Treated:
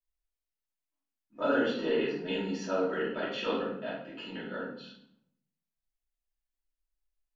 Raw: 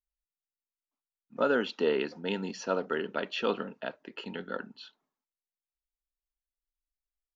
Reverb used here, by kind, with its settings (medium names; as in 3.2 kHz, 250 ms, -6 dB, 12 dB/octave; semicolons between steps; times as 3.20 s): simulated room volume 140 m³, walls mixed, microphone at 2.8 m; trim -10.5 dB